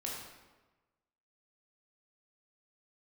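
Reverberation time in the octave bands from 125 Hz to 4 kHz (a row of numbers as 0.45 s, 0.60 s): 1.3 s, 1.2 s, 1.2 s, 1.2 s, 1.0 s, 0.85 s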